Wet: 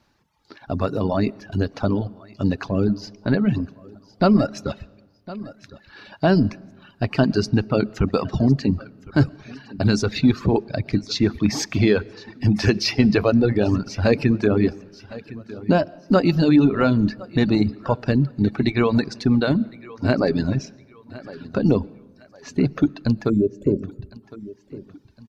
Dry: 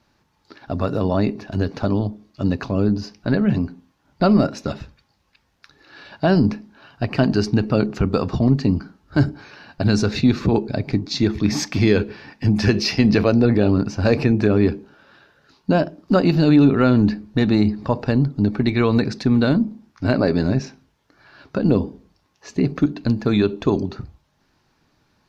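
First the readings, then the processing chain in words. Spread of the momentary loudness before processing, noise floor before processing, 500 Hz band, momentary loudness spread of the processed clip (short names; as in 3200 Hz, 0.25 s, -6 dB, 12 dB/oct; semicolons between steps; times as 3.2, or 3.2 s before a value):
9 LU, -65 dBFS, -1.0 dB, 19 LU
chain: digital reverb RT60 1.2 s, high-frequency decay 0.55×, pre-delay 80 ms, DRR 14 dB; spectral gain 23.3–24.22, 620–6800 Hz -26 dB; on a send: feedback echo 1.059 s, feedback 38%, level -17.5 dB; on the sum: reverb removal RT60 1.2 s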